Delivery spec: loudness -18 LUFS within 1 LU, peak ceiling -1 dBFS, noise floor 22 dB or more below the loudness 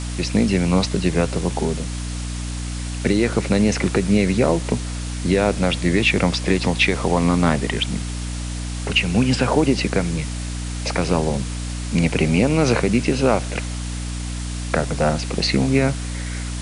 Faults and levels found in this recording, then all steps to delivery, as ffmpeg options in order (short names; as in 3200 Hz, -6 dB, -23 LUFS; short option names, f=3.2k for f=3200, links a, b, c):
hum 60 Hz; harmonics up to 300 Hz; hum level -25 dBFS; noise floor -27 dBFS; noise floor target -43 dBFS; loudness -20.5 LUFS; peak -4.0 dBFS; loudness target -18.0 LUFS
-> -af "bandreject=f=60:t=h:w=4,bandreject=f=120:t=h:w=4,bandreject=f=180:t=h:w=4,bandreject=f=240:t=h:w=4,bandreject=f=300:t=h:w=4"
-af "afftdn=nr=16:nf=-27"
-af "volume=2.5dB"